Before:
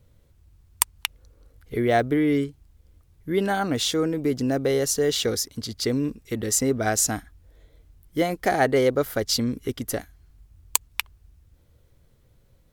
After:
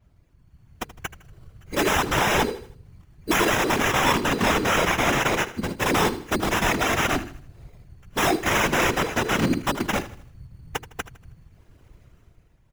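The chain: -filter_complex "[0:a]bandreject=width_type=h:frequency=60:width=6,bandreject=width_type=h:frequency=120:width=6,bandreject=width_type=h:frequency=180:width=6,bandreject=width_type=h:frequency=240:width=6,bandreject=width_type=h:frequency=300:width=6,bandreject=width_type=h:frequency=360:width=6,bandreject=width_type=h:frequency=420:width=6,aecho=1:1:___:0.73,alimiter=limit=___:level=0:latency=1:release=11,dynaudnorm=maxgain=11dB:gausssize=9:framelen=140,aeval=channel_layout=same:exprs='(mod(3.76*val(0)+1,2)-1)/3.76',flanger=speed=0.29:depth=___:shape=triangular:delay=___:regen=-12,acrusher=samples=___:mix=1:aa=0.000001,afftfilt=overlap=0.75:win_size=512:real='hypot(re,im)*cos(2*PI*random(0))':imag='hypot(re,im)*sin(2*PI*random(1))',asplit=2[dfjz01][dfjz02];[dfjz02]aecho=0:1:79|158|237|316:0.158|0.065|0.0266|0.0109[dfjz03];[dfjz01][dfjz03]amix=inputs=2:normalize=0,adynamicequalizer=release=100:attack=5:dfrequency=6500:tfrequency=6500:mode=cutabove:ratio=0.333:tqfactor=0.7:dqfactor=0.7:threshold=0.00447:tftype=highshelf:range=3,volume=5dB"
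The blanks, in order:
2.9, -10dB, 3.2, 2.9, 10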